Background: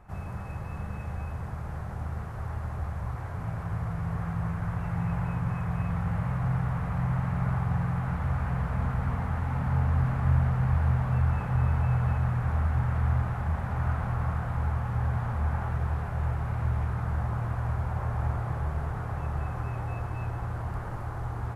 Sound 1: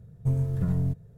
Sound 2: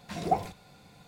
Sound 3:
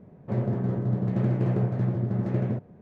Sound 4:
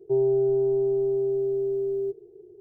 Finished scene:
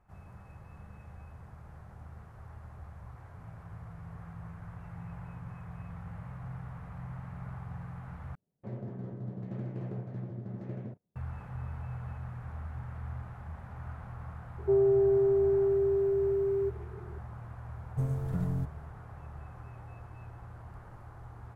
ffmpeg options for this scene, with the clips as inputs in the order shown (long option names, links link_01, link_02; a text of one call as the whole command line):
ffmpeg -i bed.wav -i cue0.wav -i cue1.wav -i cue2.wav -i cue3.wav -filter_complex "[0:a]volume=-14dB[link_01];[3:a]agate=range=-21dB:threshold=-41dB:ratio=16:release=100:detection=peak[link_02];[4:a]acontrast=67[link_03];[1:a]lowshelf=frequency=170:gain=-5[link_04];[link_01]asplit=2[link_05][link_06];[link_05]atrim=end=8.354[link_07];[link_02]atrim=end=2.81,asetpts=PTS-STARTPTS,volume=-13.5dB[link_08];[link_06]atrim=start=11.156[link_09];[link_03]atrim=end=2.6,asetpts=PTS-STARTPTS,volume=-8.5dB,afade=type=in:duration=0.004:curve=hsin,afade=type=out:start_time=2.596:duration=0.004:curve=hsin,adelay=14580[link_10];[link_04]atrim=end=1.17,asetpts=PTS-STARTPTS,volume=-3dB,afade=type=in:duration=0.004:curve=hsin,afade=type=out:start_time=1.166:duration=0.004:curve=hsin,adelay=17720[link_11];[link_07][link_08]acrossfade=duration=0.004:curve1=hsin:curve2=hsin[link_12];[link_12][link_09]acrossfade=duration=0.004:curve1=hsin:curve2=hsin[link_13];[link_13][link_10][link_11]amix=inputs=3:normalize=0" out.wav